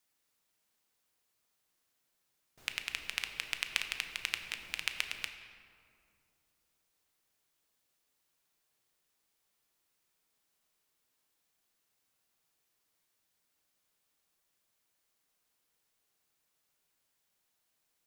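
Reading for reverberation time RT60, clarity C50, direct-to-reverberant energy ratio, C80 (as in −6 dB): 2.5 s, 8.0 dB, 6.0 dB, 9.0 dB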